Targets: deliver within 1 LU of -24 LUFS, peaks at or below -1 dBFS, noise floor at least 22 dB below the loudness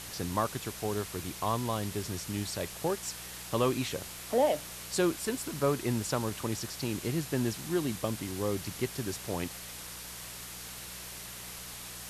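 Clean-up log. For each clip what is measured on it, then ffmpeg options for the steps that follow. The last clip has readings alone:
hum 60 Hz; harmonics up to 180 Hz; hum level -53 dBFS; noise floor -44 dBFS; noise floor target -56 dBFS; loudness -33.5 LUFS; peak -15.0 dBFS; loudness target -24.0 LUFS
-> -af "bandreject=f=60:t=h:w=4,bandreject=f=120:t=h:w=4,bandreject=f=180:t=h:w=4"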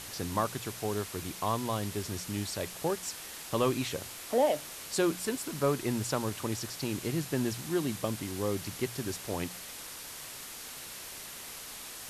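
hum none; noise floor -44 dBFS; noise floor target -56 dBFS
-> -af "afftdn=nr=12:nf=-44"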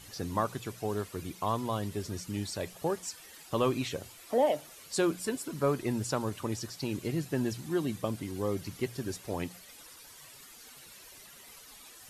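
noise floor -52 dBFS; noise floor target -56 dBFS
-> -af "afftdn=nr=6:nf=-52"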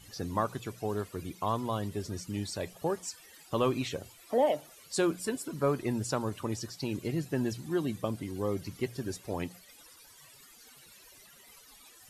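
noise floor -56 dBFS; loudness -33.5 LUFS; peak -15.0 dBFS; loudness target -24.0 LUFS
-> -af "volume=9.5dB"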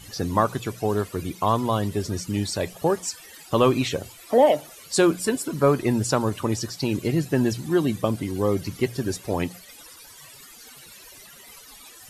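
loudness -24.0 LUFS; peak -5.5 dBFS; noise floor -47 dBFS

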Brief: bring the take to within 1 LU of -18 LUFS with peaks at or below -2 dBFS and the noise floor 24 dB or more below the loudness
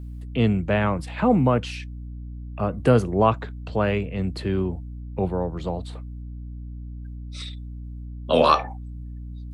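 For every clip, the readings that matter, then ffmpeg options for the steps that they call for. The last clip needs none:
hum 60 Hz; harmonics up to 300 Hz; hum level -33 dBFS; loudness -23.5 LUFS; peak -4.0 dBFS; loudness target -18.0 LUFS
-> -af "bandreject=f=60:t=h:w=4,bandreject=f=120:t=h:w=4,bandreject=f=180:t=h:w=4,bandreject=f=240:t=h:w=4,bandreject=f=300:t=h:w=4"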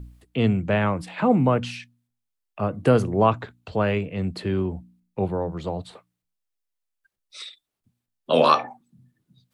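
hum none; loudness -23.5 LUFS; peak -4.0 dBFS; loudness target -18.0 LUFS
-> -af "volume=5.5dB,alimiter=limit=-2dB:level=0:latency=1"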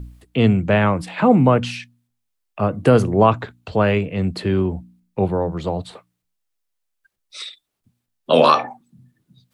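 loudness -18.5 LUFS; peak -2.0 dBFS; noise floor -76 dBFS

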